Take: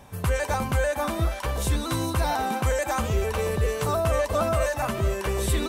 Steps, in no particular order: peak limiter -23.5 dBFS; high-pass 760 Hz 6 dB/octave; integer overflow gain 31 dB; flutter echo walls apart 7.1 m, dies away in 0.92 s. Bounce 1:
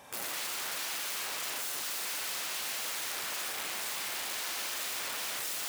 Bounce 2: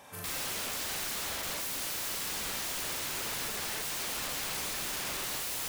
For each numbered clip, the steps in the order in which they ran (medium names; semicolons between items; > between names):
peak limiter > flutter echo > integer overflow > high-pass; high-pass > peak limiter > flutter echo > integer overflow